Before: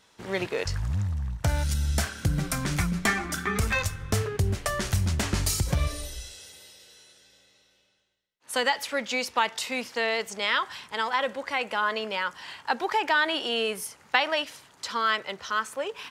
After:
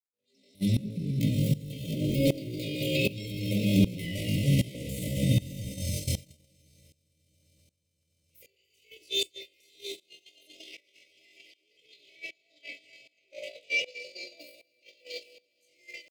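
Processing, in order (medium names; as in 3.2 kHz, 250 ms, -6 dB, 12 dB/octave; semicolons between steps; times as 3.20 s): backward echo that repeats 103 ms, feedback 64%, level -7.5 dB; Doppler pass-by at 4.00 s, 50 m/s, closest 11 m; recorder AGC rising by 54 dB/s; brick-wall FIR band-stop 370–1100 Hz; treble shelf 8.9 kHz -6 dB; echo with a slow build-up 129 ms, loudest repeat 5, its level -15.5 dB; FDN reverb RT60 0.77 s, low-frequency decay 1.3×, high-frequency decay 0.3×, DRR -5 dB; crackle 47 per s -37 dBFS; pitch shift +10 st; gate -26 dBFS, range -23 dB; sawtooth tremolo in dB swelling 1.3 Hz, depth 19 dB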